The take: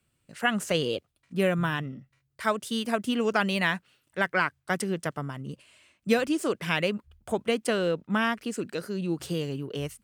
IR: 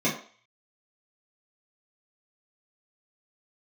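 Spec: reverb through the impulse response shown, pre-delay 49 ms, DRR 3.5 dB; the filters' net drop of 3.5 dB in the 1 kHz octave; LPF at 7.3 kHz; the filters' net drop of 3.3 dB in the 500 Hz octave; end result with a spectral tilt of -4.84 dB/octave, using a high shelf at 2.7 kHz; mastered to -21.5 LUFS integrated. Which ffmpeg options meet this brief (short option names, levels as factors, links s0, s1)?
-filter_complex "[0:a]lowpass=7300,equalizer=f=500:t=o:g=-3,equalizer=f=1000:t=o:g=-5.5,highshelf=f=2700:g=8.5,asplit=2[s0][s1];[1:a]atrim=start_sample=2205,adelay=49[s2];[s1][s2]afir=irnorm=-1:irlink=0,volume=0.158[s3];[s0][s3]amix=inputs=2:normalize=0,volume=1.58"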